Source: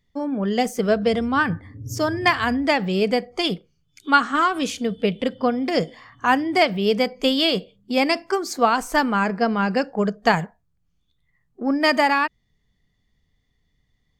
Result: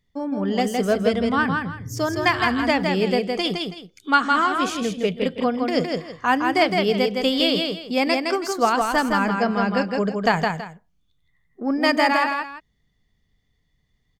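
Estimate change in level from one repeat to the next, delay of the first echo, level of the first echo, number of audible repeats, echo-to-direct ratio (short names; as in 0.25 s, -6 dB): -11.5 dB, 0.163 s, -4.0 dB, 2, -3.5 dB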